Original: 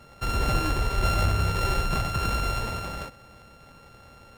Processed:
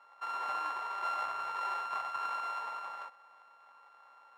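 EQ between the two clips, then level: resonant high-pass 1 kHz, resonance Q 3.8; low-pass 1.8 kHz 6 dB/octave; -9.0 dB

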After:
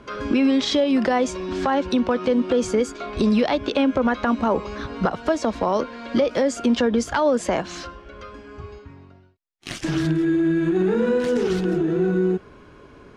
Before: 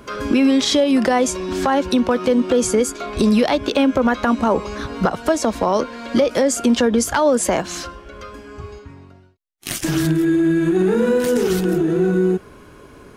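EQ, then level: low-pass 4.9 kHz 12 dB/octave; -3.5 dB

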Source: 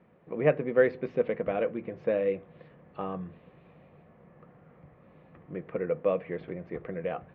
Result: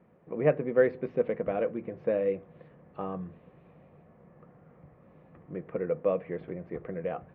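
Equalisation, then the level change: treble shelf 2.6 kHz -10.5 dB; 0.0 dB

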